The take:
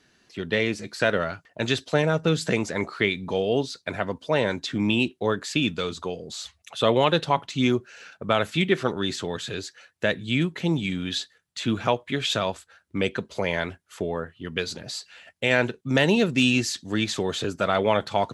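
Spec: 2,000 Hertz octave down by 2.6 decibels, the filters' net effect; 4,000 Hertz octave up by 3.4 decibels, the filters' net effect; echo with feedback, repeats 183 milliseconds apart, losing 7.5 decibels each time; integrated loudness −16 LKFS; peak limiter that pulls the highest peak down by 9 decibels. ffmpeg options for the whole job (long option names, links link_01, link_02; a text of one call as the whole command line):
ffmpeg -i in.wav -af "equalizer=frequency=2000:width_type=o:gain=-5.5,equalizer=frequency=4000:width_type=o:gain=6,alimiter=limit=-14.5dB:level=0:latency=1,aecho=1:1:183|366|549|732|915:0.422|0.177|0.0744|0.0312|0.0131,volume=11dB" out.wav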